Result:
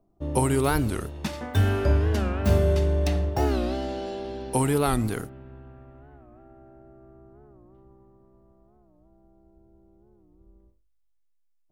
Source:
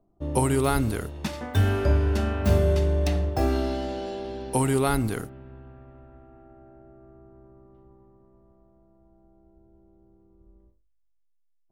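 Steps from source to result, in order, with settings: record warp 45 rpm, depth 160 cents

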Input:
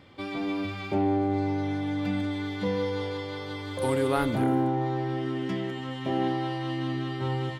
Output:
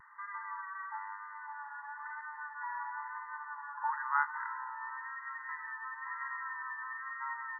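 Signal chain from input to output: brick-wall FIR band-pass 840–2000 Hz; vibrato 1 Hz 37 cents; dynamic EQ 1300 Hz, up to -4 dB, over -53 dBFS, Q 1; gain +5.5 dB

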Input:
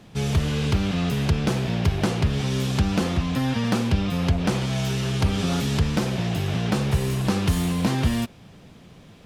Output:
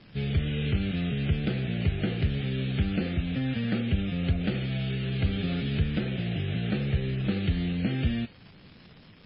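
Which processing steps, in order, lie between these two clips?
fixed phaser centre 2400 Hz, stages 4; crackle 300/s -34 dBFS; gain -4 dB; MP3 16 kbps 12000 Hz

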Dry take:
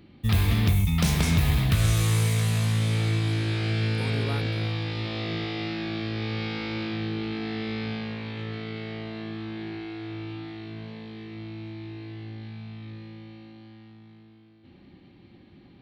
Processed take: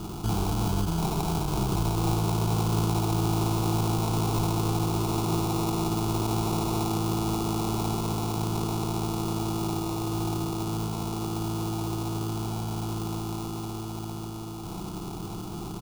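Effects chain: per-bin compression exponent 0.4; comb 3.5 ms, depth 54%; limiter -13 dBFS, peak gain reduction 6.5 dB; sample-and-hold 28×; fixed phaser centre 370 Hz, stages 8

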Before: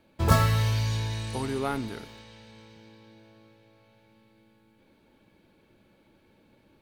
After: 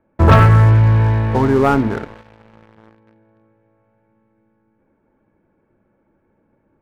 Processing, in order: LPF 1700 Hz 24 dB/oct; notches 60/120/180/240/300 Hz; sample leveller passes 3; gain +6 dB

